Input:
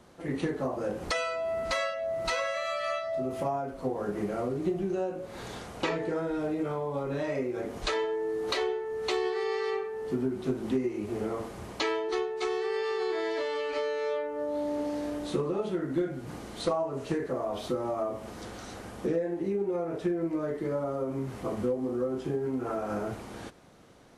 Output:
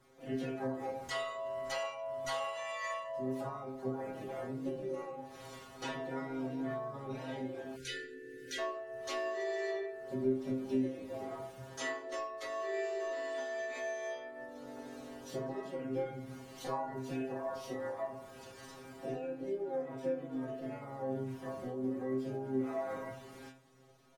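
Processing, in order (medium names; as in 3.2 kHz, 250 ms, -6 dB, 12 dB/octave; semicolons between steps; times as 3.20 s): harmony voices -3 st -4 dB, +7 st -2 dB; inharmonic resonator 130 Hz, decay 0.44 s, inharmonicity 0.002; spectral selection erased 7.76–8.59 s, 530–1400 Hz; trim +1 dB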